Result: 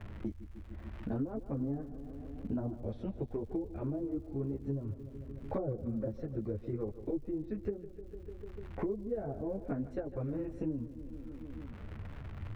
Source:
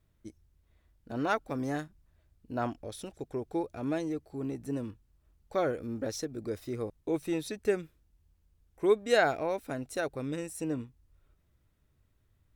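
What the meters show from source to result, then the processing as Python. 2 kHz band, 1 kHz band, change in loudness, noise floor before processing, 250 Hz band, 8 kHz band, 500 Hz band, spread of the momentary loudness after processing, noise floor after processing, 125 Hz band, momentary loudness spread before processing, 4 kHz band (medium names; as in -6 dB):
-21.0 dB, -14.0 dB, -6.0 dB, -71 dBFS, -1.5 dB, under -25 dB, -7.5 dB, 10 LU, -49 dBFS, +3.5 dB, 14 LU, under -20 dB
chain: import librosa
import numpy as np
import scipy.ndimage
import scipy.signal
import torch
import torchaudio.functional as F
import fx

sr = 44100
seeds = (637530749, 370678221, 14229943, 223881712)

p1 = fx.env_lowpass_down(x, sr, base_hz=480.0, full_db=-27.5)
p2 = fx.chorus_voices(p1, sr, voices=6, hz=1.5, base_ms=12, depth_ms=3.0, mix_pct=55)
p3 = fx.riaa(p2, sr, side='playback')
p4 = fx.dmg_crackle(p3, sr, seeds[0], per_s=240.0, level_db=-57.0)
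p5 = p4 + fx.echo_feedback(p4, sr, ms=149, feedback_pct=59, wet_db=-16.0, dry=0)
p6 = fx.band_squash(p5, sr, depth_pct=100)
y = p6 * 10.0 ** (-5.0 / 20.0)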